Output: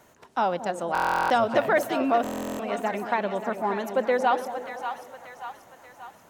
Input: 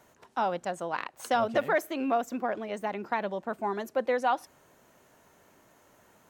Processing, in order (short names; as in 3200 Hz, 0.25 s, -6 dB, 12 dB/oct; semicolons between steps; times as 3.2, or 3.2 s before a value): split-band echo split 720 Hz, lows 0.225 s, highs 0.584 s, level -8.5 dB; stuck buffer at 0.93/2.22, samples 1024, times 15; warbling echo 0.122 s, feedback 77%, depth 158 cents, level -22.5 dB; gain +4 dB